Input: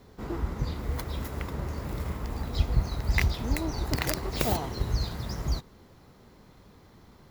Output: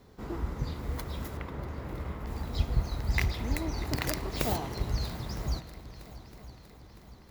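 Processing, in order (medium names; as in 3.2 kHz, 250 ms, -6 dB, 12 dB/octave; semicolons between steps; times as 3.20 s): 1.37–2.27 s: tone controls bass -2 dB, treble -11 dB; multi-head delay 320 ms, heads second and third, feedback 53%, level -19 dB; spring tank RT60 3.3 s, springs 48 ms, chirp 30 ms, DRR 11.5 dB; trim -3 dB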